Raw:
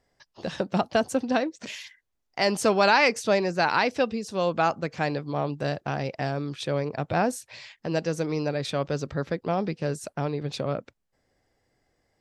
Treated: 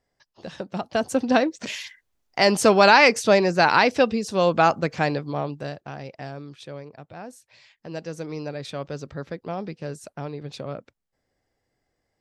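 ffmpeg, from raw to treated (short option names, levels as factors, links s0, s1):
-af "volume=7.08,afade=t=in:st=0.83:d=0.51:silence=0.298538,afade=t=out:st=4.86:d=0.92:silence=0.237137,afade=t=out:st=6.34:d=0.82:silence=0.354813,afade=t=in:st=7.16:d=1.19:silence=0.266073"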